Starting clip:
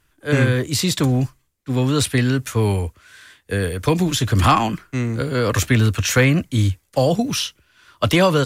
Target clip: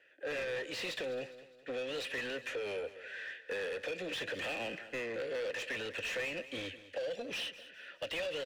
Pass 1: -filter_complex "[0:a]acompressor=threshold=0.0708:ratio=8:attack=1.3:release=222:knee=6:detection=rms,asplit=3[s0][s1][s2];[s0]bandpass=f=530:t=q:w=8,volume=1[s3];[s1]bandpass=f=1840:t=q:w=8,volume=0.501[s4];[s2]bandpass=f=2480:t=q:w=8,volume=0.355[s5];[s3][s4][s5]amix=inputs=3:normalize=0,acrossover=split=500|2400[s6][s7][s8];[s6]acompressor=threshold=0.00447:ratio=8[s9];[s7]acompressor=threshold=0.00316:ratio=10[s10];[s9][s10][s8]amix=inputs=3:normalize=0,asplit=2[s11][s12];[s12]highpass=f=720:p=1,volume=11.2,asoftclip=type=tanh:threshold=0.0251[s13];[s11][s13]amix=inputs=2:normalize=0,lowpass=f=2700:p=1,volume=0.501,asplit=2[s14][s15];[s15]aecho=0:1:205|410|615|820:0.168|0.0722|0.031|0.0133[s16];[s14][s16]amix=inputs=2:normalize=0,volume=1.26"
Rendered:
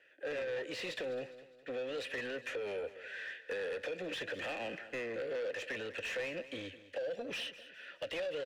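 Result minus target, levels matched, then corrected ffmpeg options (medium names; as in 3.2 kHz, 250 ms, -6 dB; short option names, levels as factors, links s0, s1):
compression: peak gain reduction +9.5 dB
-filter_complex "[0:a]acompressor=threshold=0.251:ratio=8:attack=1.3:release=222:knee=6:detection=rms,asplit=3[s0][s1][s2];[s0]bandpass=f=530:t=q:w=8,volume=1[s3];[s1]bandpass=f=1840:t=q:w=8,volume=0.501[s4];[s2]bandpass=f=2480:t=q:w=8,volume=0.355[s5];[s3][s4][s5]amix=inputs=3:normalize=0,acrossover=split=500|2400[s6][s7][s8];[s6]acompressor=threshold=0.00447:ratio=8[s9];[s7]acompressor=threshold=0.00316:ratio=10[s10];[s9][s10][s8]amix=inputs=3:normalize=0,asplit=2[s11][s12];[s12]highpass=f=720:p=1,volume=11.2,asoftclip=type=tanh:threshold=0.0251[s13];[s11][s13]amix=inputs=2:normalize=0,lowpass=f=2700:p=1,volume=0.501,asplit=2[s14][s15];[s15]aecho=0:1:205|410|615|820:0.168|0.0722|0.031|0.0133[s16];[s14][s16]amix=inputs=2:normalize=0,volume=1.26"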